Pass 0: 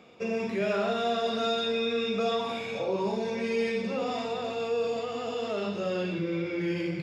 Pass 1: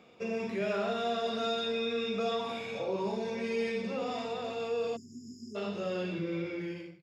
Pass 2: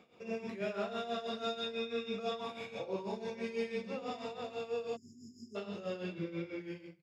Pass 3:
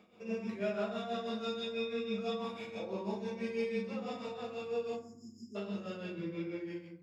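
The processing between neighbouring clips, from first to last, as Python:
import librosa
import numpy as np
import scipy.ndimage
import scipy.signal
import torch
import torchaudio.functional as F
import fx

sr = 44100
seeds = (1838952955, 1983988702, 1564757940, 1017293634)

y1 = fx.fade_out_tail(x, sr, length_s=0.58)
y1 = fx.spec_erase(y1, sr, start_s=4.96, length_s=0.59, low_hz=410.0, high_hz=4900.0)
y1 = F.gain(torch.from_numpy(y1), -4.0).numpy()
y2 = y1 * (1.0 - 0.73 / 2.0 + 0.73 / 2.0 * np.cos(2.0 * np.pi * 6.1 * (np.arange(len(y1)) / sr)))
y2 = F.gain(torch.from_numpy(y2), -2.5).numpy()
y3 = fx.rev_fdn(y2, sr, rt60_s=0.62, lf_ratio=1.55, hf_ratio=0.45, size_ms=28.0, drr_db=3.0)
y3 = F.gain(torch.from_numpy(y3), -2.0).numpy()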